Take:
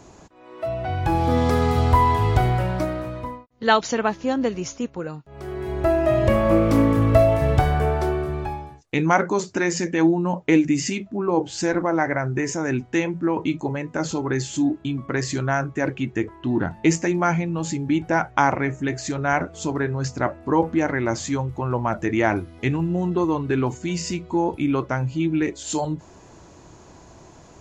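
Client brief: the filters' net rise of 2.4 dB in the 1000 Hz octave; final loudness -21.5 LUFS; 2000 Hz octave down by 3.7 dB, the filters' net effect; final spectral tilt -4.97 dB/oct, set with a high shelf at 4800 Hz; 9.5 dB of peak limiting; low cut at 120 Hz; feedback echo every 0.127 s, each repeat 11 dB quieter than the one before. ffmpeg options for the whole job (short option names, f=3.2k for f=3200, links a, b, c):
-af "highpass=120,equalizer=f=1k:t=o:g=4.5,equalizer=f=2k:t=o:g=-6,highshelf=f=4.8k:g=-6.5,alimiter=limit=-12.5dB:level=0:latency=1,aecho=1:1:127|254|381:0.282|0.0789|0.0221,volume=2.5dB"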